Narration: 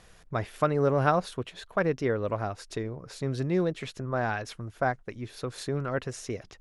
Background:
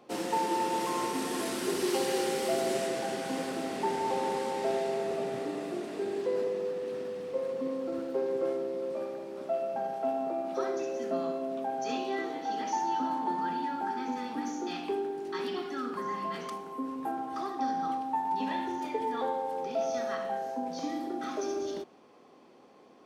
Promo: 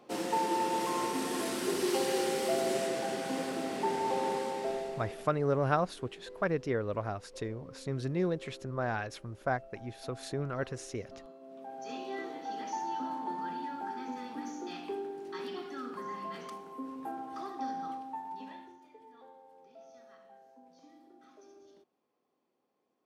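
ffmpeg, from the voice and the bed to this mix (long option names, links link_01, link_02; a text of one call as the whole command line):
ffmpeg -i stem1.wav -i stem2.wav -filter_complex "[0:a]adelay=4650,volume=-4.5dB[link_01];[1:a]volume=12.5dB,afade=type=out:start_time=4.31:duration=1:silence=0.125893,afade=type=in:start_time=11.39:duration=0.79:silence=0.211349,afade=type=out:start_time=17.68:duration=1.13:silence=0.125893[link_02];[link_01][link_02]amix=inputs=2:normalize=0" out.wav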